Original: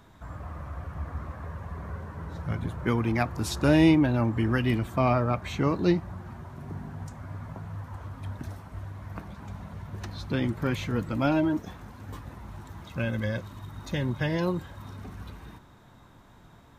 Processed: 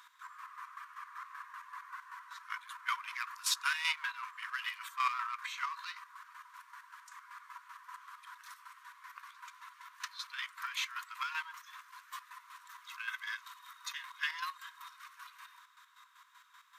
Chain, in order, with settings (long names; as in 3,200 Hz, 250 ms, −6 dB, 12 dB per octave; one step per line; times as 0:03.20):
in parallel at −10 dB: wave folding −26.5 dBFS
on the sum: square-wave tremolo 5.2 Hz, depth 60%, duty 40%
linear-phase brick-wall high-pass 950 Hz
level +1 dB